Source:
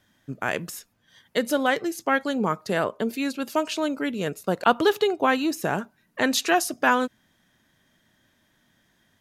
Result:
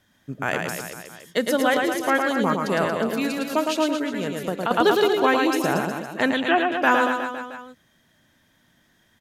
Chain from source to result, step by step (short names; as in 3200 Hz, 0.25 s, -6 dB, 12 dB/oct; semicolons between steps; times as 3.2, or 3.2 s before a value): 6.32–6.72 elliptic low-pass 3300 Hz, stop band 40 dB; on a send: reverse bouncing-ball echo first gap 0.11 s, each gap 1.1×, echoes 5; 3.95–4.71 on the sum: compressor 4:1, threshold -24 dBFS, peak gain reduction 10.5 dB; gain +1 dB